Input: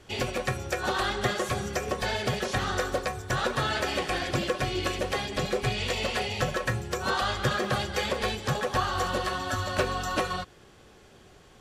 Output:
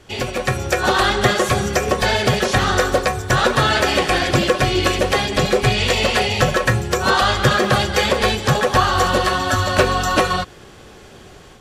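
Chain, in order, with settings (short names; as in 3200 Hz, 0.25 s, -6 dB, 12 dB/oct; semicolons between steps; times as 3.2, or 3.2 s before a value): AGC gain up to 6.5 dB; in parallel at -11 dB: soft clip -14 dBFS, distortion -17 dB; on the sum: gain +3.5 dB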